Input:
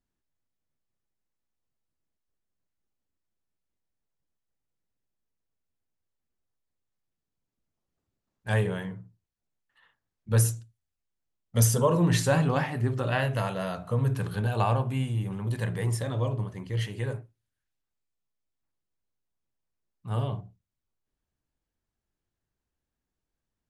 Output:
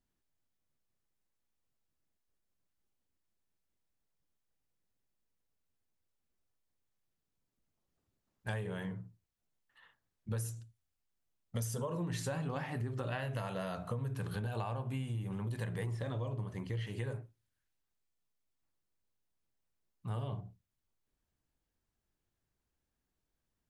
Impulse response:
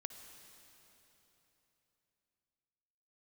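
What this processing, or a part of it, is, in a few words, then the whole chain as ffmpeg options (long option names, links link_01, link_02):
serial compression, peaks first: -filter_complex "[0:a]asettb=1/sr,asplit=3[link_01][link_02][link_03];[link_01]atrim=end=15.864[link_04];[link_02]atrim=start=15.86:end=16.87,asetpts=PTS-STARTPTS,afade=type=in:duration=0.004:curve=qsin,afade=type=out:start_time=1.006:duration=0.004:curve=qsin,acrossover=split=4000[link_05][link_06];[link_06]acompressor=threshold=-56dB:ratio=4:attack=1:release=60[link_07];[link_05][link_07]amix=inputs=2:normalize=0[link_08];[link_03]atrim=start=16.866[link_09];[link_04][link_08]acrossfade=duration=0.004:curve1=hsin:curve2=qsin[link_10];[link_10][link_09]acrossfade=duration=0.004:curve1=qsin:curve2=hsin,acompressor=threshold=-31dB:ratio=6,acompressor=threshold=-40dB:ratio=1.5"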